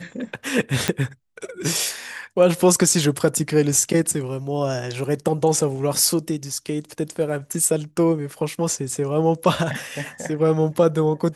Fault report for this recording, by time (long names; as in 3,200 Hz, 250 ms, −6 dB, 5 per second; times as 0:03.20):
0:00.88: click −4 dBFS